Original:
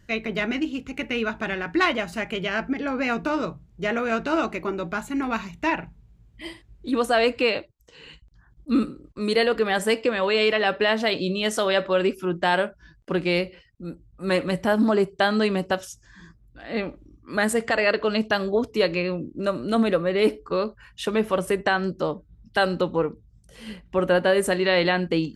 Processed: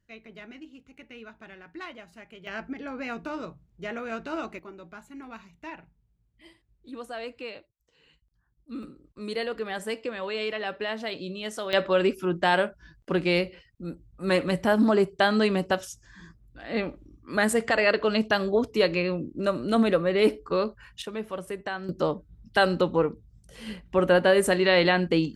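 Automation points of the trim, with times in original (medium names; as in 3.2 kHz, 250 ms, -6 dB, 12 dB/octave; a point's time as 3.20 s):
-19 dB
from 2.47 s -9.5 dB
from 4.59 s -16.5 dB
from 8.83 s -10 dB
from 11.73 s -1 dB
from 21.02 s -11 dB
from 21.89 s 0 dB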